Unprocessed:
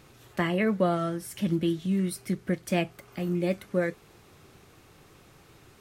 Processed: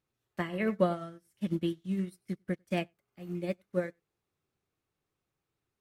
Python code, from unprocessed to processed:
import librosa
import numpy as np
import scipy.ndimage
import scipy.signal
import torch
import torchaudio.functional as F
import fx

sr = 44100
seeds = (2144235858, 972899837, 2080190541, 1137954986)

y = x + 10.0 ** (-15.5 / 20.0) * np.pad(x, (int(97 * sr / 1000.0), 0))[:len(x)]
y = fx.upward_expand(y, sr, threshold_db=-41.0, expansion=2.5)